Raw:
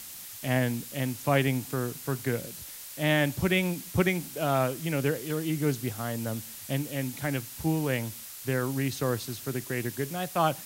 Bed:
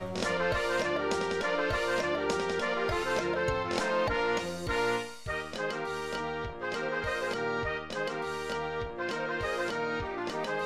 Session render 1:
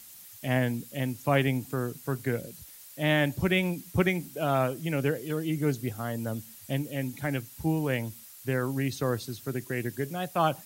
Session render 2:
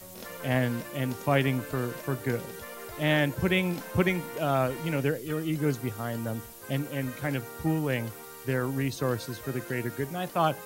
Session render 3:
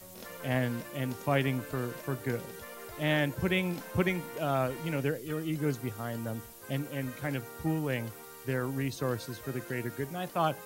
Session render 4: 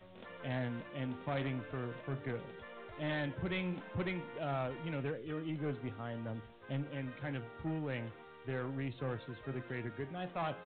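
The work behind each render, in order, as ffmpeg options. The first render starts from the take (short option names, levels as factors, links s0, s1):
-af "afftdn=nr=9:nf=-43"
-filter_complex "[1:a]volume=0.251[s0];[0:a][s0]amix=inputs=2:normalize=0"
-af "volume=0.668"
-af "flanger=delay=6.4:depth=5.6:regen=85:speed=0.43:shape=triangular,aresample=8000,asoftclip=type=tanh:threshold=0.0299,aresample=44100"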